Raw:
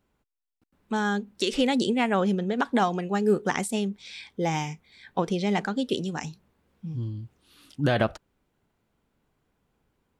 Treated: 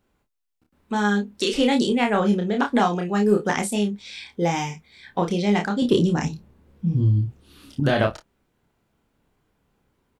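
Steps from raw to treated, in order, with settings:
0:05.82–0:07.80: low-shelf EQ 470 Hz +10.5 dB
in parallel at −9.5 dB: soft clipping −16.5 dBFS, distortion −17 dB
on the sum: ambience of single reflections 29 ms −4 dB, 54 ms −16 dB

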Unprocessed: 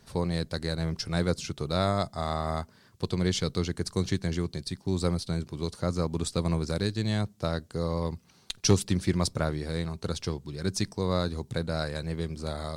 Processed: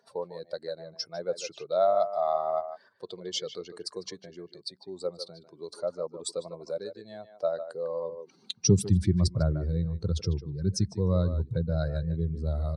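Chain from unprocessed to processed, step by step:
expanding power law on the bin magnitudes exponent 1.9
far-end echo of a speakerphone 150 ms, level −10 dB
high-pass filter sweep 630 Hz → 71 Hz, 0:08.04–0:09.03

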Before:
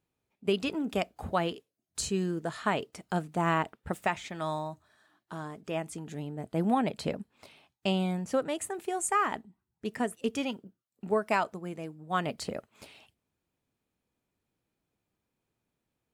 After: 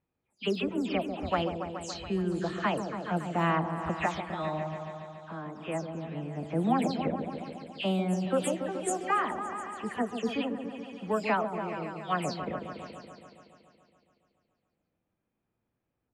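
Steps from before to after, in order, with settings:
every frequency bin delayed by itself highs early, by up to 172 ms
low-pass that shuts in the quiet parts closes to 2,300 Hz, open at −24.5 dBFS
echo whose low-pass opens from repeat to repeat 141 ms, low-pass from 750 Hz, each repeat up 1 octave, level −6 dB

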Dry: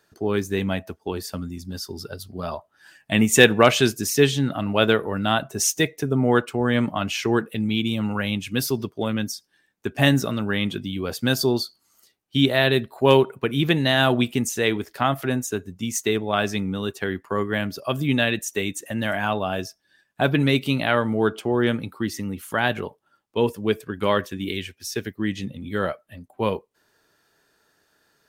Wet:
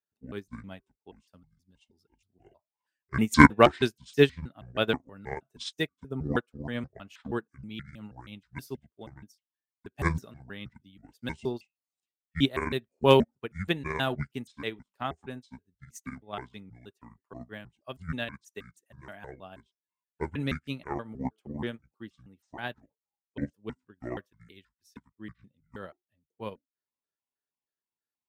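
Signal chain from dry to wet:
pitch shifter gated in a rhythm −9 semitones, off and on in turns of 159 ms
expander for the loud parts 2.5 to 1, over −35 dBFS
level +1 dB

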